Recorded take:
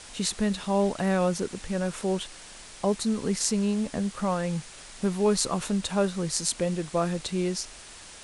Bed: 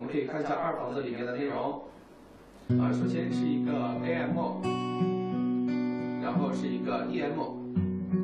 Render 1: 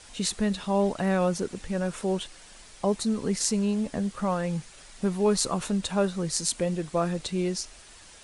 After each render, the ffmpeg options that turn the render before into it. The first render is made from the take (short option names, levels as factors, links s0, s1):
-af "afftdn=nr=6:nf=-46"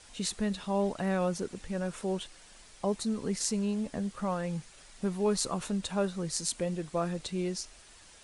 -af "volume=0.562"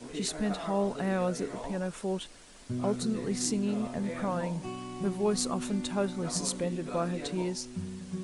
-filter_complex "[1:a]volume=0.376[s0];[0:a][s0]amix=inputs=2:normalize=0"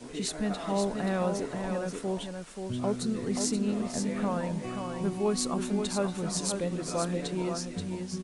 -af "aecho=1:1:530:0.501"